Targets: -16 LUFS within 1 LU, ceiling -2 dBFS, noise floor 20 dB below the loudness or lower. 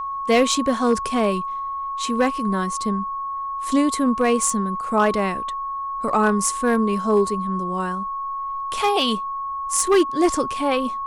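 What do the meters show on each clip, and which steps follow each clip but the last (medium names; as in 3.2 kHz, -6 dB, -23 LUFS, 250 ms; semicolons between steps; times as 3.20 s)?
clipped samples 0.6%; clipping level -10.0 dBFS; steady tone 1.1 kHz; tone level -25 dBFS; loudness -21.5 LUFS; peak level -10.0 dBFS; loudness target -16.0 LUFS
-> clip repair -10 dBFS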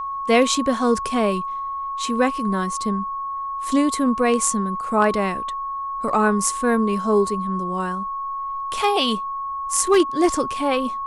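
clipped samples 0.0%; steady tone 1.1 kHz; tone level -25 dBFS
-> band-stop 1.1 kHz, Q 30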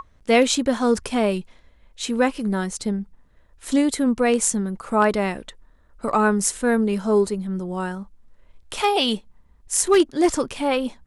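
steady tone not found; loudness -21.5 LUFS; peak level -3.5 dBFS; loudness target -16.0 LUFS
-> trim +5.5 dB; peak limiter -2 dBFS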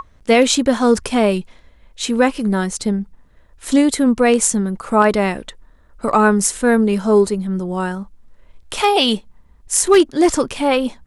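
loudness -16.5 LUFS; peak level -2.0 dBFS; noise floor -51 dBFS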